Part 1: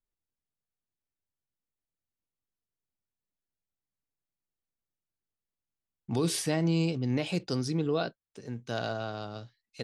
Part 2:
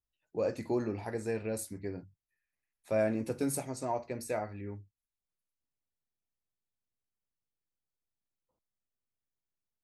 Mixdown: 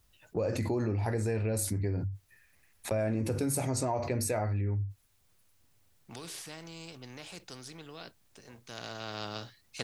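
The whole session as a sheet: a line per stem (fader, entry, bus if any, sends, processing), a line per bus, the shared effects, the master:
+1.5 dB, 0.00 s, no send, spectrum-flattening compressor 2:1; auto duck -12 dB, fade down 1.00 s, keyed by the second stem
+2.5 dB, 0.00 s, no send, gate -47 dBFS, range -20 dB; peaking EQ 99 Hz +11.5 dB 0.62 oct; level flattener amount 70%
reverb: none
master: compression 2.5:1, threshold -30 dBFS, peak gain reduction 6.5 dB

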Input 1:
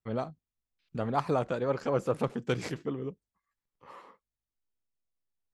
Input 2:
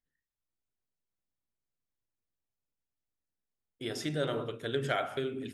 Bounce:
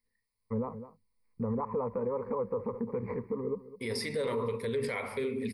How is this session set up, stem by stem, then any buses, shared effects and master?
+1.5 dB, 0.45 s, no send, echo send -16 dB, compression, threshold -31 dBFS, peak gain reduction 8.5 dB; low-pass 1.4 kHz 24 dB/octave
+2.0 dB, 0.00 s, no send, no echo send, none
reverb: none
echo: delay 208 ms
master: rippled EQ curve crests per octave 0.91, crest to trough 18 dB; peak limiter -24.5 dBFS, peak gain reduction 10 dB

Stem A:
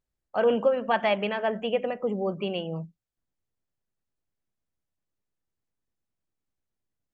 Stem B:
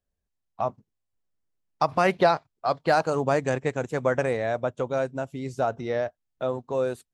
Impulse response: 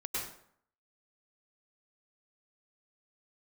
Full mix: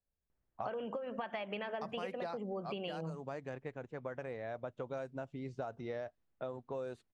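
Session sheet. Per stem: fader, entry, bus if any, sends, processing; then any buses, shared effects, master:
+1.5 dB, 0.30 s, no send, harmonic-percussive split percussive +3 dB; compression, threshold -24 dBFS, peak gain reduction 7.5 dB
2.53 s -7.5 dB -> 3.19 s -16 dB -> 4.24 s -16 dB -> 4.97 s -9 dB, 0.00 s, no send, none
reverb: none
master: level-controlled noise filter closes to 1.8 kHz, open at -27.5 dBFS; compression 10:1, threshold -37 dBFS, peak gain reduction 17 dB

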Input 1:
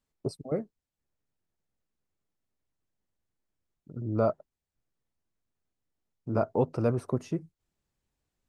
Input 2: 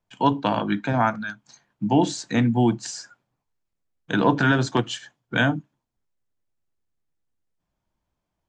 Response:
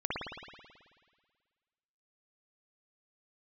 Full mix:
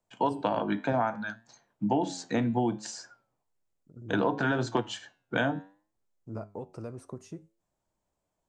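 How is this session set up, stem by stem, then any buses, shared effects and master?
-4.5 dB, 0.00 s, no send, peaking EQ 7.5 kHz +10.5 dB 0.84 oct; compression, threshold -26 dBFS, peak gain reduction 7 dB
-2.5 dB, 0.00 s, no send, peaking EQ 570 Hz +9 dB 1.9 oct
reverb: none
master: flange 0.65 Hz, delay 8.2 ms, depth 3.5 ms, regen +85%; compression 6:1, threshold -23 dBFS, peak gain reduction 9.5 dB

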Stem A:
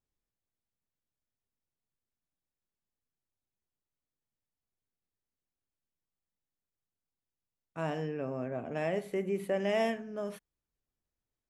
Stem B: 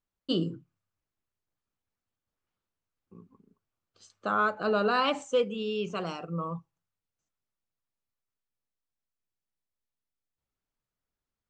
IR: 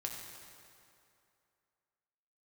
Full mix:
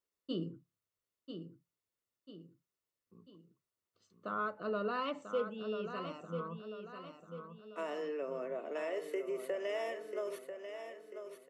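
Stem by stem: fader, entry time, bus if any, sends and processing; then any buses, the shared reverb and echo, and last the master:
+1.0 dB, 0.00 s, no send, echo send -8.5 dB, steep high-pass 330 Hz 36 dB/octave; compression 6:1, threshold -35 dBFS, peak gain reduction 9.5 dB
-9.0 dB, 0.00 s, no send, echo send -8 dB, low-pass 2.5 kHz 6 dB/octave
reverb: none
echo: feedback delay 992 ms, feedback 45%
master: comb of notches 800 Hz

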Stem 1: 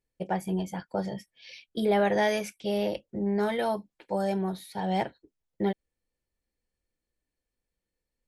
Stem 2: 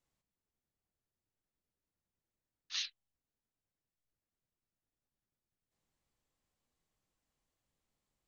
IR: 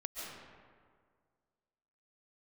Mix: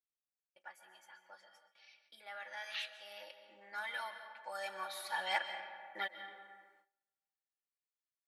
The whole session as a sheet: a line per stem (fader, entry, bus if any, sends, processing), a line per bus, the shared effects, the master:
2.87 s -22.5 dB -> 3.40 s -14 dB -> 4.33 s -14 dB -> 4.86 s -5 dB, 0.35 s, send -3.5 dB, resonant high-pass 1.4 kHz, resonance Q 2; comb 3.5 ms, depth 72%
+1.0 dB, 0.00 s, send -12.5 dB, Chebyshev band-pass 1.3–2.9 kHz, order 2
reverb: on, RT60 1.9 s, pre-delay 100 ms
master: gate with hold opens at -58 dBFS

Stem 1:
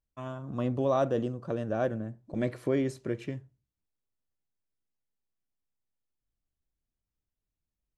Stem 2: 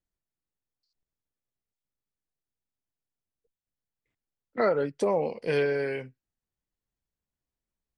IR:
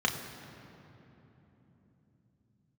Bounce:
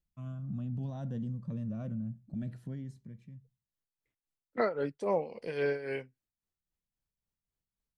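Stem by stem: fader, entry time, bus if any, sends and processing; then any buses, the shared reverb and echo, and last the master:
2.50 s -12 dB -> 3.08 s -19.5 dB, 0.00 s, no send, resonant low shelf 270 Hz +11 dB, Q 3; peak limiter -18 dBFS, peak gain reduction 6.5 dB; Shepard-style phaser rising 0.57 Hz; auto duck -16 dB, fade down 1.65 s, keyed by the second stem
-2.5 dB, 0.00 s, no send, tremolo 3.7 Hz, depth 74%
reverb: none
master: none

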